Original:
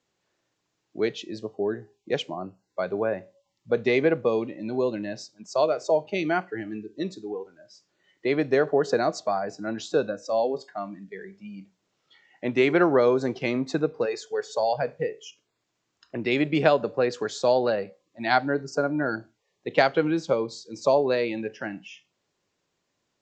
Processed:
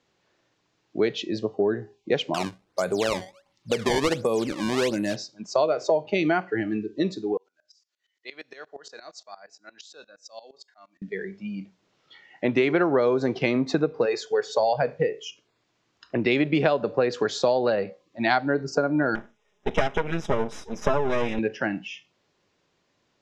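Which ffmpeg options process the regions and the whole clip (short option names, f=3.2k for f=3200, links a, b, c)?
-filter_complex "[0:a]asettb=1/sr,asplit=3[a][b][c];[a]atrim=end=2.344[d];[b]atrim=start=2.34:end=5.16,asetpts=PTS-STARTPTS,afade=t=in:d=0.004:c=qsin,afade=t=out:st=2.816:d=0.004:c=qsin,acrusher=samples=19:mix=1:aa=0.000001:lfo=1:lforange=30.4:lforate=1.4,acompressor=threshold=-29dB:ratio=2:attack=3.2:release=140:knee=1:detection=peak,highshelf=f=5k:g=7.5[e];[c]atrim=start=5.156[f];[d][e]acrossfade=d=0.004:c1=hsin:c2=qsin[g];[g][f]acrossfade=d=0.004:c1=qsin:c2=hsin,asettb=1/sr,asplit=3[h][i][j];[h]atrim=end=7.374[k];[i]atrim=start=7.37:end=11.02,asetpts=PTS-STARTPTS,afade=t=in:d=0.004:c=qsin,afade=t=out:st=3.646:d=0.004:c=qsin,aderivative,aeval=exprs='val(0)*pow(10,-19*if(lt(mod(-8.6*n/s,1),2*abs(-8.6)/1000),1-mod(-8.6*n/s,1)/(2*abs(-8.6)/1000),(mod(-8.6*n/s,1)-2*abs(-8.6)/1000)/(1-2*abs(-8.6)/1000))/20)':c=same[l];[j]atrim=start=11.016[m];[k][l]acrossfade=d=0.004:c1=hsin:c2=qsin[n];[n][m]acrossfade=d=0.004:c1=qsin:c2=hsin,asettb=1/sr,asplit=3[o][p][q];[o]atrim=end=19.154[r];[p]atrim=start=19.15:end=21.39,asetpts=PTS-STARTPTS,afade=t=in:d=0.004:c=qsin,afade=t=out:st=2.236:d=0.004:c=qsin,aecho=1:1:4.8:0.99,atrim=end_sample=98784,aeval=exprs='max(val(0),0)':c=same,asuperstop=centerf=4400:order=4:qfactor=3.4[s];[q]atrim=start=21.386[t];[r][s]acrossfade=d=0.004:c1=hsin:c2=qsin[u];[u][t]acrossfade=d=0.004:c1=qsin:c2=hsin,lowpass=5.4k,acompressor=threshold=-26dB:ratio=4,volume=7dB"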